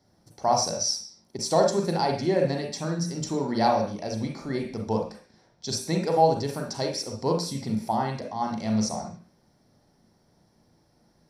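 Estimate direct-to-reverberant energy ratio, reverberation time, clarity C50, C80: 1.5 dB, 0.45 s, 6.0 dB, 11.0 dB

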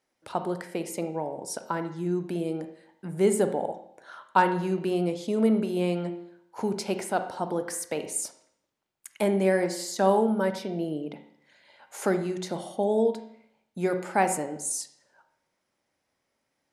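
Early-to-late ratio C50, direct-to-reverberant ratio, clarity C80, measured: 10.0 dB, 8.5 dB, 13.0 dB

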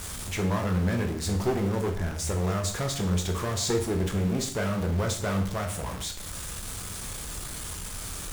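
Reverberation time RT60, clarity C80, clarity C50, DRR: 0.55 s, 12.5 dB, 9.0 dB, 3.0 dB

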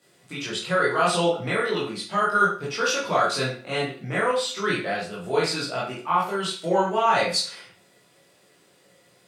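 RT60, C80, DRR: 0.40 s, 9.0 dB, -7.5 dB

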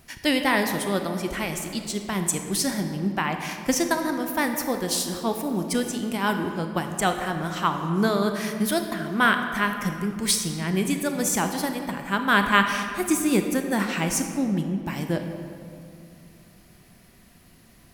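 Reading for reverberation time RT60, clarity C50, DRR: 2.5 s, 6.5 dB, 5.5 dB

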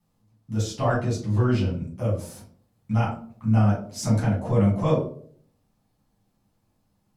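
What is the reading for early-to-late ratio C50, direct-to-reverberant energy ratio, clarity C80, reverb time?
5.5 dB, -7.5 dB, 10.0 dB, 0.55 s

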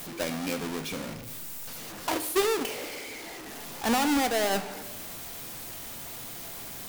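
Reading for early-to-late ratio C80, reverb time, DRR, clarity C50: 14.5 dB, 1.3 s, 10.5 dB, 13.0 dB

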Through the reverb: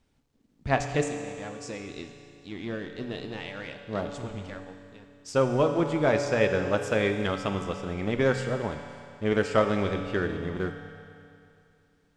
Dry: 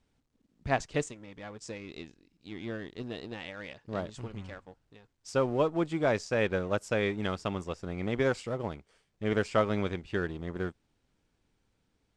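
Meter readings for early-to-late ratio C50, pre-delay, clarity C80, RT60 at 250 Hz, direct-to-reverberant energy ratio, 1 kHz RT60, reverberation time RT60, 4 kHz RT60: 6.5 dB, 7 ms, 7.0 dB, 2.7 s, 5.0 dB, 2.6 s, 2.6 s, 2.5 s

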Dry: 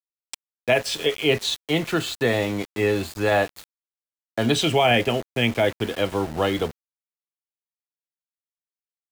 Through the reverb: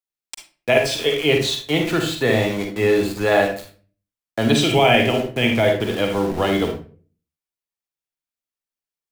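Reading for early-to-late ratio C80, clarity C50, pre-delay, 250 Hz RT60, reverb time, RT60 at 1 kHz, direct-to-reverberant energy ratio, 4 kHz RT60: 11.5 dB, 5.0 dB, 40 ms, 0.55 s, 0.40 s, 0.35 s, 3.0 dB, 0.30 s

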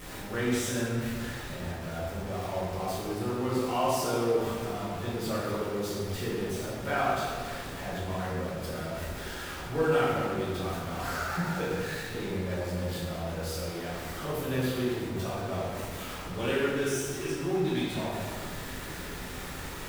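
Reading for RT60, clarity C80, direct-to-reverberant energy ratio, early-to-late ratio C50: 1.9 s, 0.5 dB, -9.0 dB, -2.0 dB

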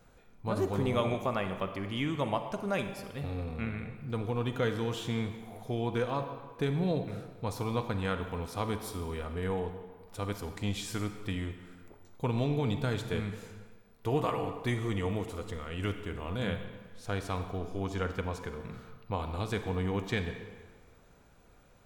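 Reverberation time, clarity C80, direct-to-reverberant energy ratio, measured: 1.5 s, 9.5 dB, 7.5 dB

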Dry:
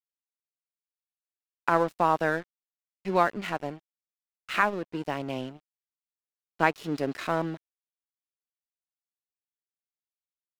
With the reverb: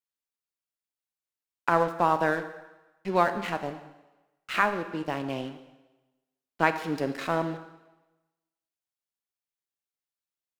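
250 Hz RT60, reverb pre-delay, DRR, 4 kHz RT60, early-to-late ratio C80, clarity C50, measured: 0.95 s, 20 ms, 9.0 dB, 1.0 s, 12.5 dB, 11.0 dB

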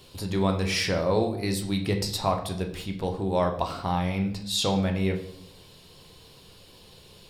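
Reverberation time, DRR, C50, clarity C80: 0.70 s, 3.0 dB, 9.5 dB, 12.5 dB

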